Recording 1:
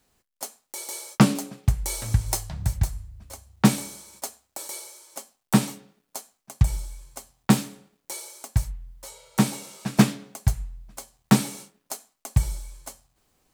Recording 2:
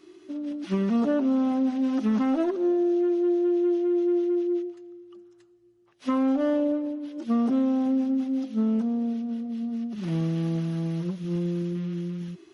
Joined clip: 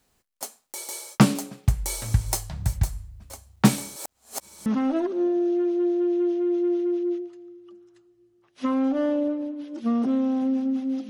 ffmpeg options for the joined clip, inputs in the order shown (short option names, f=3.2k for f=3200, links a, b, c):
-filter_complex "[0:a]apad=whole_dur=11.09,atrim=end=11.09,asplit=2[a][b];[a]atrim=end=3.962[c];[b]atrim=start=3.958:end=4.662,asetpts=PTS-STARTPTS,areverse[d];[1:a]atrim=start=2.098:end=8.53[e];[c][d]acrossfade=d=0.004:c1=hsin:c2=hsin[f];[f][e]acrossfade=d=0.004:c1=hsin:c2=hsin"